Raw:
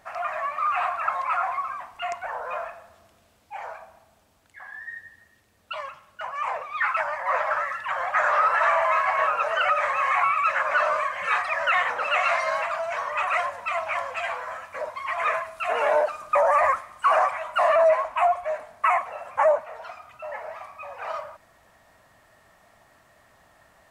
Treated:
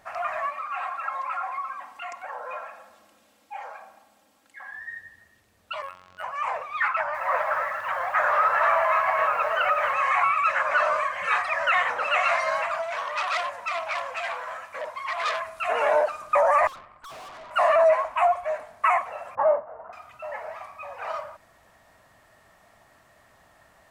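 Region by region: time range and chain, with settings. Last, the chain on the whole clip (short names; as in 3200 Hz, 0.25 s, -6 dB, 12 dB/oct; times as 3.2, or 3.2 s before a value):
0.5–4.71 HPF 190 Hz + compressor 1.5:1, threshold -41 dBFS + comb 3.7 ms, depth 62%
5.82–6.23 zero-crossing step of -51.5 dBFS + robotiser 91.4 Hz + decimation joined by straight lines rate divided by 4×
6.88–9.94 LPF 2900 Hz 6 dB/oct + lo-fi delay 0.265 s, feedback 35%, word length 8-bit, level -9 dB
12.82–15.4 low shelf 170 Hz -8.5 dB + core saturation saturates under 2900 Hz
16.67–17.51 running mean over 14 samples + tube stage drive 41 dB, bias 0.7 + Doppler distortion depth 0.19 ms
19.35–19.93 sample sorter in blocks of 16 samples + steep low-pass 1300 Hz + doubler 48 ms -13.5 dB
whole clip: dry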